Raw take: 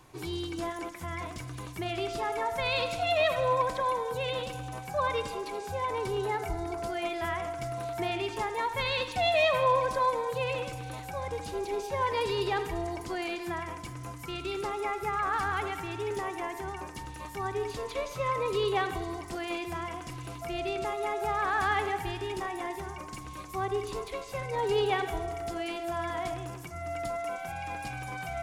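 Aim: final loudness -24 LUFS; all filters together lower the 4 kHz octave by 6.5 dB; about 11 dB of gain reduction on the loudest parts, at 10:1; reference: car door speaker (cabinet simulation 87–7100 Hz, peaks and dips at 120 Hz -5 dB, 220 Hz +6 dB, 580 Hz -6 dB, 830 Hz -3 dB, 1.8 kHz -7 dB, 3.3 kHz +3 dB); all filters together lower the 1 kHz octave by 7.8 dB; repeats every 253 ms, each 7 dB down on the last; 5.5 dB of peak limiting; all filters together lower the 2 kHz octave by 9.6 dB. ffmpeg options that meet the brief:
-af "equalizer=f=1000:t=o:g=-5.5,equalizer=f=2000:t=o:g=-5.5,equalizer=f=4000:t=o:g=-8,acompressor=threshold=0.0158:ratio=10,alimiter=level_in=2.99:limit=0.0631:level=0:latency=1,volume=0.335,highpass=87,equalizer=f=120:t=q:w=4:g=-5,equalizer=f=220:t=q:w=4:g=6,equalizer=f=580:t=q:w=4:g=-6,equalizer=f=830:t=q:w=4:g=-3,equalizer=f=1800:t=q:w=4:g=-7,equalizer=f=3300:t=q:w=4:g=3,lowpass=f=7100:w=0.5412,lowpass=f=7100:w=1.3066,aecho=1:1:253|506|759|1012|1265:0.447|0.201|0.0905|0.0407|0.0183,volume=8.91"

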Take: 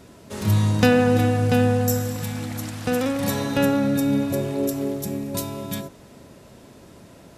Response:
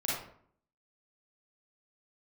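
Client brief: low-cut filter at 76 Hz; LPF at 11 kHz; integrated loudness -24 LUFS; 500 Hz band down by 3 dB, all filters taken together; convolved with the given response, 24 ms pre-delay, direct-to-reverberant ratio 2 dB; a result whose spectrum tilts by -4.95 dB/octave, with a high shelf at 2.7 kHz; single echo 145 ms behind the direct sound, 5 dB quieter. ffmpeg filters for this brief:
-filter_complex "[0:a]highpass=76,lowpass=11000,equalizer=f=500:t=o:g=-3.5,highshelf=f=2700:g=7.5,aecho=1:1:145:0.562,asplit=2[s0][s1];[1:a]atrim=start_sample=2205,adelay=24[s2];[s1][s2]afir=irnorm=-1:irlink=0,volume=0.398[s3];[s0][s3]amix=inputs=2:normalize=0,volume=0.596"

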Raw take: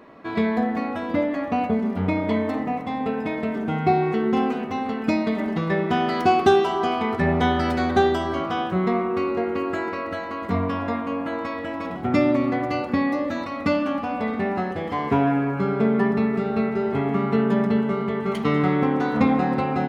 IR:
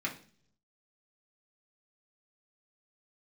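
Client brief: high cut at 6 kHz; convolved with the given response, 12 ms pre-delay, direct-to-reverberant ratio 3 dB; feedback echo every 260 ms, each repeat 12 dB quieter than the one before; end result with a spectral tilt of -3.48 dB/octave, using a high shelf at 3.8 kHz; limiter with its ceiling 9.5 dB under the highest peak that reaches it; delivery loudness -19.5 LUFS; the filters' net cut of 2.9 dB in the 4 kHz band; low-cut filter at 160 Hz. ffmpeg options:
-filter_complex "[0:a]highpass=160,lowpass=6000,highshelf=f=3800:g=8.5,equalizer=f=4000:t=o:g=-8.5,alimiter=limit=0.168:level=0:latency=1,aecho=1:1:260|520|780:0.251|0.0628|0.0157,asplit=2[s0][s1];[1:a]atrim=start_sample=2205,adelay=12[s2];[s1][s2]afir=irnorm=-1:irlink=0,volume=0.422[s3];[s0][s3]amix=inputs=2:normalize=0,volume=1.58"

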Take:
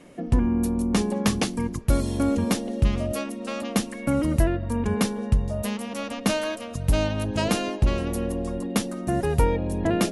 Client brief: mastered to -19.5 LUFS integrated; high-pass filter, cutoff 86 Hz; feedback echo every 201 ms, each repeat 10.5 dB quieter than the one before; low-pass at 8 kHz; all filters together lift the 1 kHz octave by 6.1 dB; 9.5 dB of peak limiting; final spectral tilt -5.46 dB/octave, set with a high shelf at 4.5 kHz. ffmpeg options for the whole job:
-af "highpass=86,lowpass=8000,equalizer=f=1000:t=o:g=7.5,highshelf=f=4500:g=3,alimiter=limit=0.168:level=0:latency=1,aecho=1:1:201|402|603:0.299|0.0896|0.0269,volume=2.24"

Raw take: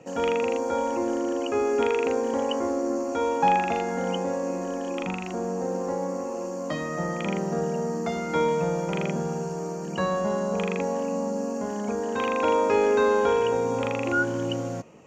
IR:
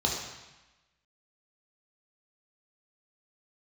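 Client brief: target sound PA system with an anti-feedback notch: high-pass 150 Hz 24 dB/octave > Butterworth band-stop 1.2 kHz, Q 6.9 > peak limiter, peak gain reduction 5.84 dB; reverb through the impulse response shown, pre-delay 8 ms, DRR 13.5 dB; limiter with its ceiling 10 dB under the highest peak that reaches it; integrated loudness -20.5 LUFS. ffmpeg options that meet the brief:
-filter_complex "[0:a]alimiter=limit=0.106:level=0:latency=1,asplit=2[s0][s1];[1:a]atrim=start_sample=2205,adelay=8[s2];[s1][s2]afir=irnorm=-1:irlink=0,volume=0.0708[s3];[s0][s3]amix=inputs=2:normalize=0,highpass=f=150:w=0.5412,highpass=f=150:w=1.3066,asuperstop=centerf=1200:order=8:qfactor=6.9,volume=3.35,alimiter=limit=0.251:level=0:latency=1"

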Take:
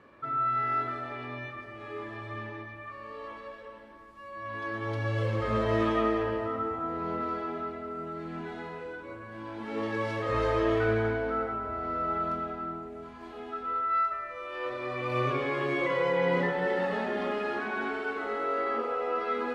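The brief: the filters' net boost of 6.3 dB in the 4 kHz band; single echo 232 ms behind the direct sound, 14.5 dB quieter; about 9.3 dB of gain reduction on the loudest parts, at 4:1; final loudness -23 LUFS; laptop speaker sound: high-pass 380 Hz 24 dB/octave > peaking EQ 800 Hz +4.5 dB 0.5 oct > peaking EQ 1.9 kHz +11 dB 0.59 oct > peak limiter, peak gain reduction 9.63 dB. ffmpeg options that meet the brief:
-af "equalizer=f=4000:t=o:g=6.5,acompressor=threshold=0.02:ratio=4,highpass=f=380:w=0.5412,highpass=f=380:w=1.3066,equalizer=f=800:t=o:w=0.5:g=4.5,equalizer=f=1900:t=o:w=0.59:g=11,aecho=1:1:232:0.188,volume=5.31,alimiter=limit=0.158:level=0:latency=1"

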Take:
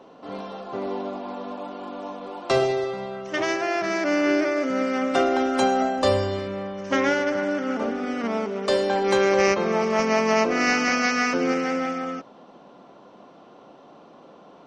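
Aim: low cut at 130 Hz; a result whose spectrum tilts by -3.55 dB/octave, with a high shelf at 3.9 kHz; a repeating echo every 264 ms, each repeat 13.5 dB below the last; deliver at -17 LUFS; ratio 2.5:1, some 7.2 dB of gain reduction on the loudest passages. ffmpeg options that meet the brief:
-af "highpass=130,highshelf=f=3900:g=-7.5,acompressor=threshold=0.0447:ratio=2.5,aecho=1:1:264|528:0.211|0.0444,volume=4.22"

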